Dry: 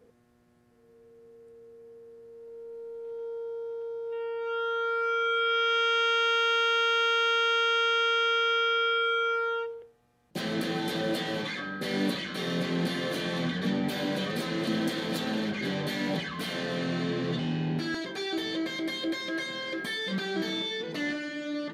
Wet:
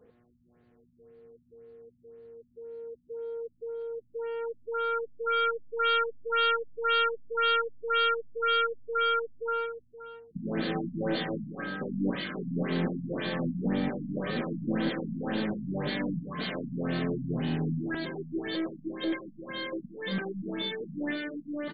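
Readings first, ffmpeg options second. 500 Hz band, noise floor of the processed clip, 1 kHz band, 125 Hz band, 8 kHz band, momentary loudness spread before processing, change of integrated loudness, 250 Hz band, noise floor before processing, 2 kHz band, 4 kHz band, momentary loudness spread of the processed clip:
-2.0 dB, -65 dBFS, -2.5 dB, 0.0 dB, under -35 dB, 12 LU, -2.5 dB, -0.5 dB, -63 dBFS, -4.5 dB, -5.5 dB, 12 LU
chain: -af "aeval=exprs='0.15*(cos(1*acos(clip(val(0)/0.15,-1,1)))-cos(1*PI/2))+0.00473*(cos(2*acos(clip(val(0)/0.15,-1,1)))-cos(2*PI/2))+0.00596*(cos(6*acos(clip(val(0)/0.15,-1,1)))-cos(6*PI/2))+0.00266*(cos(8*acos(clip(val(0)/0.15,-1,1)))-cos(8*PI/2))':c=same,aecho=1:1:534:0.211,afftfilt=real='re*lt(b*sr/1024,250*pow(4800/250,0.5+0.5*sin(2*PI*1.9*pts/sr)))':imag='im*lt(b*sr/1024,250*pow(4800/250,0.5+0.5*sin(2*PI*1.9*pts/sr)))':win_size=1024:overlap=0.75"

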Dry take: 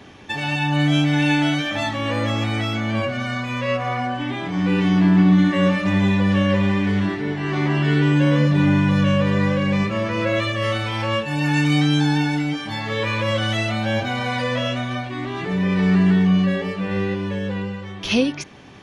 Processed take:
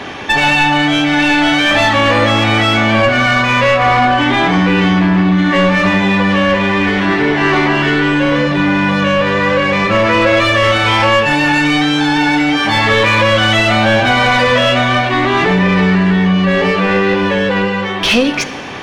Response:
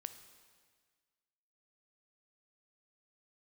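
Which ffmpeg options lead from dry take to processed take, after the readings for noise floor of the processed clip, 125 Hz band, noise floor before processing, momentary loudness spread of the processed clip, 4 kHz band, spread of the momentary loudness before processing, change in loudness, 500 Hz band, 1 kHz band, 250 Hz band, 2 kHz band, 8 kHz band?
-18 dBFS, +2.5 dB, -33 dBFS, 3 LU, +12.0 dB, 9 LU, +8.5 dB, +11.0 dB, +14.0 dB, +5.5 dB, +13.5 dB, no reading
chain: -filter_complex "[0:a]acompressor=threshold=0.0794:ratio=6,bandreject=f=50:t=h:w=6,bandreject=f=100:t=h:w=6,bandreject=f=150:t=h:w=6,bandreject=f=200:t=h:w=6,asplit=2[s0][s1];[s1]highpass=f=720:p=1,volume=6.31,asoftclip=type=tanh:threshold=0.188[s2];[s0][s2]amix=inputs=2:normalize=0,lowpass=f=2700:p=1,volume=0.501,asplit=2[s3][s4];[1:a]atrim=start_sample=2205,lowshelf=f=73:g=9[s5];[s4][s5]afir=irnorm=-1:irlink=0,volume=3.76[s6];[s3][s6]amix=inputs=2:normalize=0,volume=1.19"

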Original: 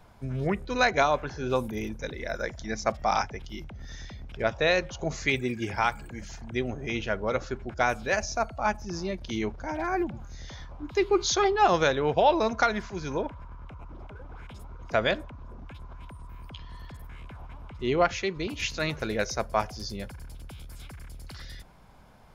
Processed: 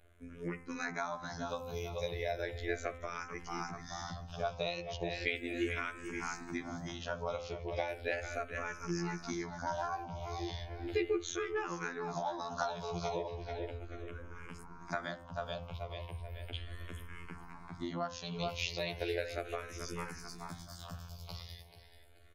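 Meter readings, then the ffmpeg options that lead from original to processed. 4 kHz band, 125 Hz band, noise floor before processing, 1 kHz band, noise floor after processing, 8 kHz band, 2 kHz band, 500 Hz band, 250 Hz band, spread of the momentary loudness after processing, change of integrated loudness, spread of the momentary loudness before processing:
-9.0 dB, -7.0 dB, -45 dBFS, -12.0 dB, -53 dBFS, -10.0 dB, -10.0 dB, -10.5 dB, -9.0 dB, 11 LU, -11.5 dB, 22 LU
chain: -filter_complex "[0:a]dynaudnorm=f=120:g=21:m=3.76,afftfilt=real='hypot(re,im)*cos(PI*b)':imag='0':win_size=2048:overlap=0.75,asplit=2[s0][s1];[s1]aecho=0:1:434|868|1302|1736:0.251|0.103|0.0422|0.0173[s2];[s0][s2]amix=inputs=2:normalize=0,acompressor=threshold=0.0562:ratio=10,bandreject=f=128.9:t=h:w=4,bandreject=f=257.8:t=h:w=4,bandreject=f=386.7:t=h:w=4,bandreject=f=515.6:t=h:w=4,bandreject=f=644.5:t=h:w=4,bandreject=f=773.4:t=h:w=4,bandreject=f=902.3:t=h:w=4,bandreject=f=1031.2:t=h:w=4,bandreject=f=1160.1:t=h:w=4,bandreject=f=1289:t=h:w=4,bandreject=f=1417.9:t=h:w=4,bandreject=f=1546.8:t=h:w=4,bandreject=f=1675.7:t=h:w=4,bandreject=f=1804.6:t=h:w=4,bandreject=f=1933.5:t=h:w=4,bandreject=f=2062.4:t=h:w=4,bandreject=f=2191.3:t=h:w=4,bandreject=f=2320.2:t=h:w=4,bandreject=f=2449.1:t=h:w=4,bandreject=f=2578:t=h:w=4,bandreject=f=2706.9:t=h:w=4,bandreject=f=2835.8:t=h:w=4,bandreject=f=2964.7:t=h:w=4,bandreject=f=3093.6:t=h:w=4,bandreject=f=3222.5:t=h:w=4,bandreject=f=3351.4:t=h:w=4,bandreject=f=3480.3:t=h:w=4,asplit=2[s3][s4];[s4]afreqshift=-0.36[s5];[s3][s5]amix=inputs=2:normalize=1,volume=0.668"

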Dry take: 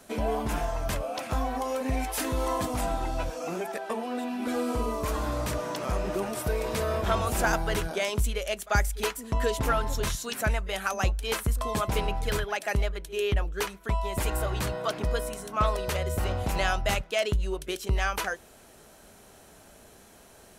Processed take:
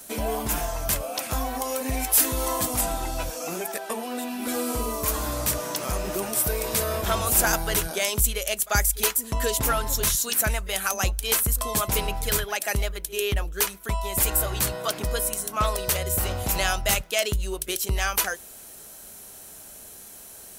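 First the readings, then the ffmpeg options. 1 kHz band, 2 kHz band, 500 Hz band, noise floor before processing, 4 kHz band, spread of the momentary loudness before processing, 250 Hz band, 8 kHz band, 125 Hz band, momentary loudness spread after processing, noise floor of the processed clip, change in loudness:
+1.0 dB, +2.5 dB, +0.5 dB, -53 dBFS, +6.0 dB, 5 LU, 0.0 dB, +13.0 dB, 0.0 dB, 10 LU, -44 dBFS, +5.0 dB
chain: -af "aemphasis=mode=production:type=75fm,volume=1.12"

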